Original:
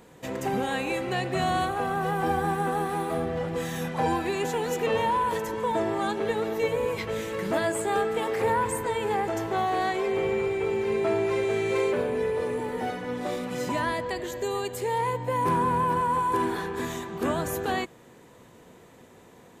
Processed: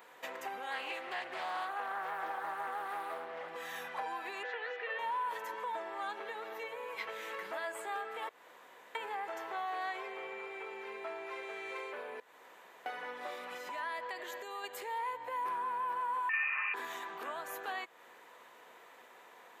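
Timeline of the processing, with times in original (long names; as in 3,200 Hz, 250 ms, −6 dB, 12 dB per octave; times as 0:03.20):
0:00.71–0:03.48: highs frequency-modulated by the lows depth 0.37 ms
0:04.43–0:04.99: loudspeaker in its box 500–4,200 Hz, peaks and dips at 500 Hz +8 dB, 910 Hz −9 dB, 1,800 Hz +9 dB
0:08.29–0:08.95: fill with room tone
0:12.20–0:12.86: fill with room tone
0:13.57–0:14.64: downward compressor, threshold −30 dBFS
0:16.29–0:16.74: voice inversion scrambler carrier 2,800 Hz
whole clip: parametric band 8,000 Hz −13 dB 2.1 octaves; downward compressor 4 to 1, threshold −36 dBFS; high-pass filter 1,000 Hz 12 dB per octave; level +5 dB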